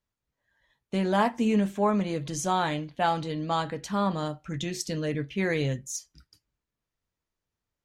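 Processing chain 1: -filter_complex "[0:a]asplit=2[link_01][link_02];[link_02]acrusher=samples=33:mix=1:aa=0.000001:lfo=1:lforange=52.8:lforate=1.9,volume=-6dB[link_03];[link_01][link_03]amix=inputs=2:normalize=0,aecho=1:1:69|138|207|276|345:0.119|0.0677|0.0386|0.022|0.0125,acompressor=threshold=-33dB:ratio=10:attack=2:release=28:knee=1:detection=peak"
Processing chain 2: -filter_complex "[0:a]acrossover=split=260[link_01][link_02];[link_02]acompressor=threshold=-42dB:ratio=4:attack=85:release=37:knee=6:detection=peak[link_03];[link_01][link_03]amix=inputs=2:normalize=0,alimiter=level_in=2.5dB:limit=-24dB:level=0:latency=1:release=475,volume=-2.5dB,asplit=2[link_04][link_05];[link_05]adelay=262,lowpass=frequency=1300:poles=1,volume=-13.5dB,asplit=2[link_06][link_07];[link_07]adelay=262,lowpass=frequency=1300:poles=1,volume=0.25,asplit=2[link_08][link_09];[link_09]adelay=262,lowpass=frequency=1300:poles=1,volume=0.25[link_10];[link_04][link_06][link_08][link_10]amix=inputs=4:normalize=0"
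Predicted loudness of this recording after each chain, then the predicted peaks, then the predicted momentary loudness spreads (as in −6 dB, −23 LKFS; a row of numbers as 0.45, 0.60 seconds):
−36.5, −37.0 LKFS; −23.5, −25.5 dBFS; 3, 4 LU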